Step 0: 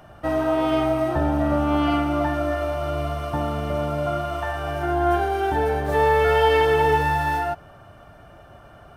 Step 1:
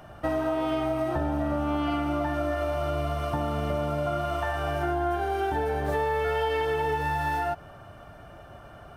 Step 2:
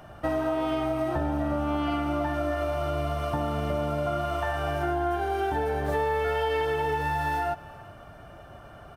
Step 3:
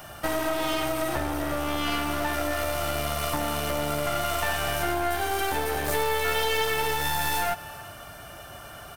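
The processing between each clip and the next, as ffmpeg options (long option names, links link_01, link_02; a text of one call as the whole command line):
ffmpeg -i in.wav -af "acompressor=threshold=-24dB:ratio=6" out.wav
ffmpeg -i in.wav -af "aecho=1:1:386:0.0841" out.wav
ffmpeg -i in.wav -af "crystalizer=i=9:c=0,aeval=exprs='clip(val(0),-1,0.0237)':channel_layout=same" out.wav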